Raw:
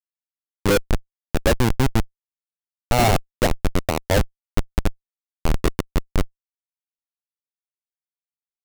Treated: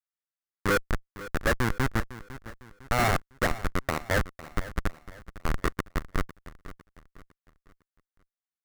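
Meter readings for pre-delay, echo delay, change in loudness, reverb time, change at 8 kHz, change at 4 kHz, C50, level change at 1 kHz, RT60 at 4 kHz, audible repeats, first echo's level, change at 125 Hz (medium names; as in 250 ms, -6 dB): no reverb, 504 ms, -6.5 dB, no reverb, -8.5 dB, -8.5 dB, no reverb, -5.0 dB, no reverb, 3, -16.0 dB, -8.5 dB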